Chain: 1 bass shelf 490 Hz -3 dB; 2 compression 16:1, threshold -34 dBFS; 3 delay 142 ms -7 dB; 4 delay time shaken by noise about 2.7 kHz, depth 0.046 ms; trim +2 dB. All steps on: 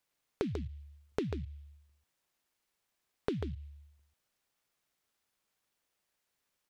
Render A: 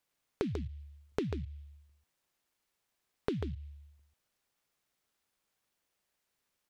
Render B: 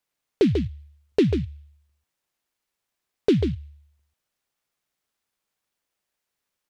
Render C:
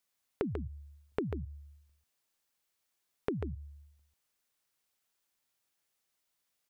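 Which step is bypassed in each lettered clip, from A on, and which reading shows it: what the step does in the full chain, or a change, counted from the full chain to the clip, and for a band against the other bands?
1, momentary loudness spread change -1 LU; 2, mean gain reduction 7.5 dB; 4, 4 kHz band -8.0 dB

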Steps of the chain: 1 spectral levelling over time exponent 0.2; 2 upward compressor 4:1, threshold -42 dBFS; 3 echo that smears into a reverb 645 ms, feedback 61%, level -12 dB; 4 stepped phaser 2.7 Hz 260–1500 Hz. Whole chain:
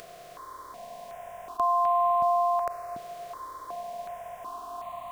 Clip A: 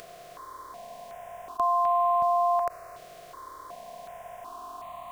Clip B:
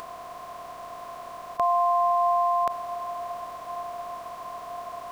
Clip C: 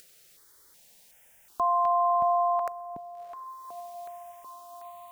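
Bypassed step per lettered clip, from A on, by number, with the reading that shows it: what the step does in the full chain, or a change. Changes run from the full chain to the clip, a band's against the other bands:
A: 3, loudness change +3.5 LU; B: 4, loudness change +1.5 LU; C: 1, crest factor change -1.5 dB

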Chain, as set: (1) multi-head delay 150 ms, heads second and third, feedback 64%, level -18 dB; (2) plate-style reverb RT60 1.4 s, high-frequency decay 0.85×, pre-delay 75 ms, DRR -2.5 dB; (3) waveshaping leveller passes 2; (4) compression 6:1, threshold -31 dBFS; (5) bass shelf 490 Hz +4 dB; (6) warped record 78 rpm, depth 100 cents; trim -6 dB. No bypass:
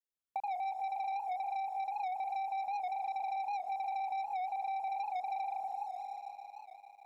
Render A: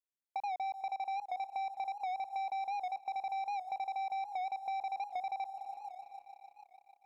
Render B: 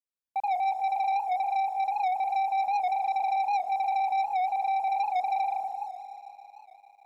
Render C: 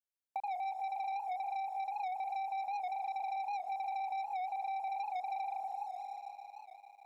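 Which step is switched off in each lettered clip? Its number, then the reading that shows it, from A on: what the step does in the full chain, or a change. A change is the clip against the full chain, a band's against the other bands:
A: 2, 4 kHz band +4.5 dB; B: 4, mean gain reduction 7.5 dB; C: 5, loudness change -1.0 LU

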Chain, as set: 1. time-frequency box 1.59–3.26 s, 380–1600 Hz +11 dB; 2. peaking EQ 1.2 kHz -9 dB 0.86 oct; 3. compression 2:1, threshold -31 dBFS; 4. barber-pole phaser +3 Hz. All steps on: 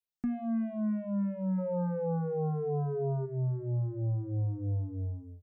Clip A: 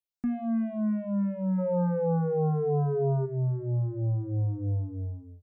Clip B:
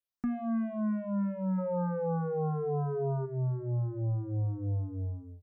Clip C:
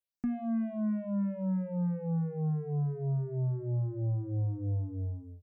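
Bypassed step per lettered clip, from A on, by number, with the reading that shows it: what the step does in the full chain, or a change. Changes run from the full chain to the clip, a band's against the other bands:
3, mean gain reduction 3.5 dB; 2, 1 kHz band +3.5 dB; 1, 500 Hz band -6.5 dB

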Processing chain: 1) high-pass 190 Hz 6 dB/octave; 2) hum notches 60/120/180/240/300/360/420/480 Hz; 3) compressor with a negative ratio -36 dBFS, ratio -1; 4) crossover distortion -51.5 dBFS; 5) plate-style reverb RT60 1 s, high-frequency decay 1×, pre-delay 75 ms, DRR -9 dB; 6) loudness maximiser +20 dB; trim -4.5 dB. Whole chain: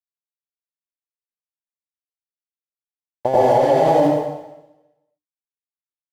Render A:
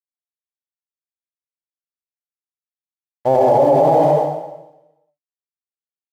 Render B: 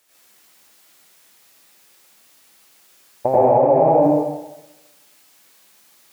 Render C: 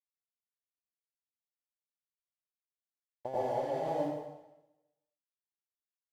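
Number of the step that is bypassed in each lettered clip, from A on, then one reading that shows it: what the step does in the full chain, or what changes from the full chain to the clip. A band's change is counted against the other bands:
3, crest factor change -2.0 dB; 4, distortion -19 dB; 6, crest factor change +4.5 dB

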